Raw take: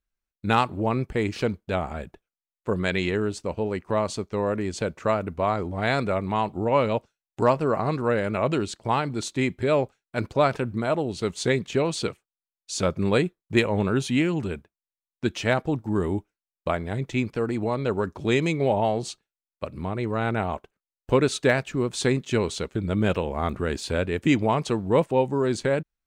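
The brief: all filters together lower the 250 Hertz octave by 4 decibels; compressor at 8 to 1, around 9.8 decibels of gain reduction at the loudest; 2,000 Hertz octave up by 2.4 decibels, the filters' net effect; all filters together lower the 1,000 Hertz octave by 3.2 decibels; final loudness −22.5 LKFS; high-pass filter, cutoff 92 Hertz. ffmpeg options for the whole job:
ffmpeg -i in.wav -af "highpass=92,equalizer=frequency=250:width_type=o:gain=-5,equalizer=frequency=1000:width_type=o:gain=-5,equalizer=frequency=2000:width_type=o:gain=4.5,acompressor=threshold=-27dB:ratio=8,volume=10.5dB" out.wav

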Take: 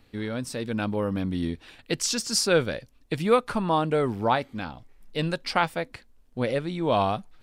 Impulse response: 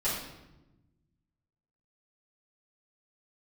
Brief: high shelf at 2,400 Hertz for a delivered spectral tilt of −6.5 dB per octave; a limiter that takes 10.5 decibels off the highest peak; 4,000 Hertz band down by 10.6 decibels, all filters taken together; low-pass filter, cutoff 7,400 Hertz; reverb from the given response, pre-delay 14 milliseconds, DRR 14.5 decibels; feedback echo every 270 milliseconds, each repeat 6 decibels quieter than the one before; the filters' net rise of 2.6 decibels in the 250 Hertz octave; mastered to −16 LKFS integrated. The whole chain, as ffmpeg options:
-filter_complex "[0:a]lowpass=7400,equalizer=frequency=250:width_type=o:gain=3.5,highshelf=frequency=2400:gain=-8.5,equalizer=frequency=4000:width_type=o:gain=-5,alimiter=limit=-18.5dB:level=0:latency=1,aecho=1:1:270|540|810|1080|1350|1620:0.501|0.251|0.125|0.0626|0.0313|0.0157,asplit=2[link_01][link_02];[1:a]atrim=start_sample=2205,adelay=14[link_03];[link_02][link_03]afir=irnorm=-1:irlink=0,volume=-22.5dB[link_04];[link_01][link_04]amix=inputs=2:normalize=0,volume=12.5dB"

